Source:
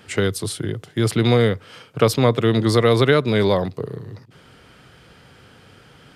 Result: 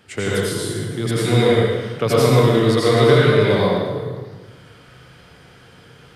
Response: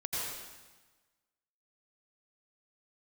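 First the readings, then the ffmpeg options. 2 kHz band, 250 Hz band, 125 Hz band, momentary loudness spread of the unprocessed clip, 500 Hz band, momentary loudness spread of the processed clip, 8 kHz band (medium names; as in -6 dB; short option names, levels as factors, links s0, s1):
+2.5 dB, +1.0 dB, +2.5 dB, 14 LU, +3.0 dB, 11 LU, +2.0 dB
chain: -filter_complex "[1:a]atrim=start_sample=2205[s0];[0:a][s0]afir=irnorm=-1:irlink=0,volume=0.75"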